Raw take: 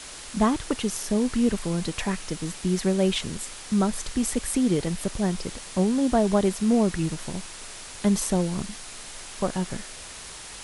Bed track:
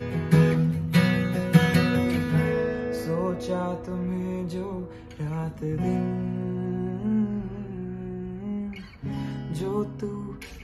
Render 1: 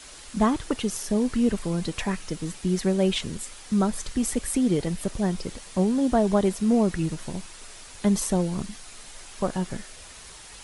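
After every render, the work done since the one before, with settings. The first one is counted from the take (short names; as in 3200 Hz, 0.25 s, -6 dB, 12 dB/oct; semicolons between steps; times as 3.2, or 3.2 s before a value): denoiser 6 dB, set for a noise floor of -41 dBFS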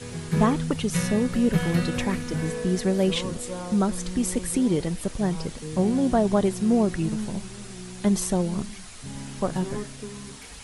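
add bed track -6.5 dB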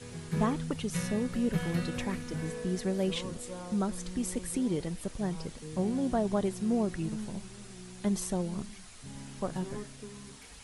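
gain -8 dB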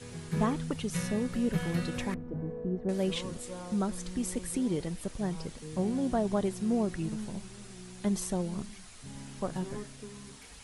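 2.14–2.89 Chebyshev low-pass 630 Hz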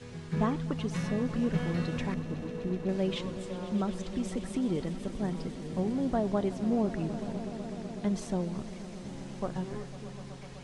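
air absorption 93 m; swelling echo 0.125 s, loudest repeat 5, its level -17.5 dB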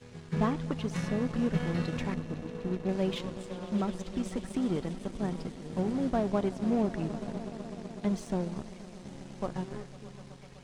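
power-law curve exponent 1.4; in parallel at -3 dB: hard clip -30.5 dBFS, distortion -9 dB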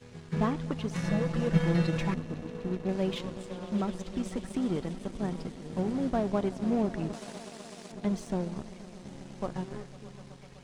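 1.04–2.14 comb 6 ms, depth 95%; 7.13–7.92 tilt +3.5 dB/oct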